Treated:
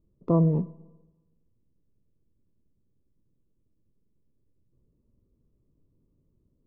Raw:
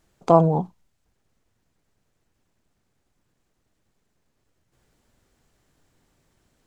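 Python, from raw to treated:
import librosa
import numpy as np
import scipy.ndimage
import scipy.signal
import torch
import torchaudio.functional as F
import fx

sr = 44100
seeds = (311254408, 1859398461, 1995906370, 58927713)

y = fx.wiener(x, sr, points=25)
y = scipy.signal.lfilter(np.full(57, 1.0 / 57), 1.0, y)
y = fx.rev_schroeder(y, sr, rt60_s=1.2, comb_ms=28, drr_db=19.0)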